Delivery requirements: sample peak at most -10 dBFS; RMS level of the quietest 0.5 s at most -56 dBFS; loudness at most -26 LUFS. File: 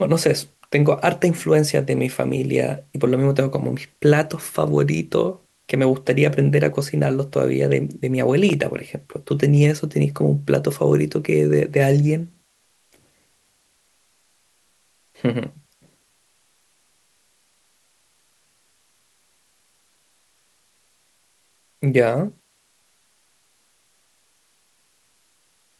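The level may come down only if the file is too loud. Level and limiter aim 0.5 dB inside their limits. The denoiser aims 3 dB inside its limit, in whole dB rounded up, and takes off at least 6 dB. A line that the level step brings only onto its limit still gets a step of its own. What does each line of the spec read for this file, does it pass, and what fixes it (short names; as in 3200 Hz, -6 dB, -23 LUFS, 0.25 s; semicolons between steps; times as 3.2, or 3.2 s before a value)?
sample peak -4.0 dBFS: fail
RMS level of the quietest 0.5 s -63 dBFS: OK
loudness -20.0 LUFS: fail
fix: gain -6.5 dB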